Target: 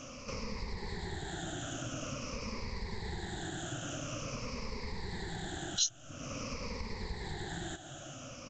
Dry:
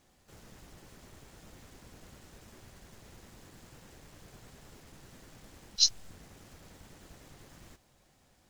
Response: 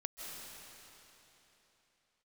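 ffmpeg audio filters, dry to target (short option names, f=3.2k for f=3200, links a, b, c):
-af "afftfilt=real='re*pow(10,18/40*sin(2*PI*(0.89*log(max(b,1)*sr/1024/100)/log(2)-(-0.48)*(pts-256)/sr)))':imag='im*pow(10,18/40*sin(2*PI*(0.89*log(max(b,1)*sr/1024/100)/log(2)-(-0.48)*(pts-256)/sr)))':win_size=1024:overlap=0.75,acompressor=threshold=-55dB:ratio=3,aresample=16000,aresample=44100,volume=17dB"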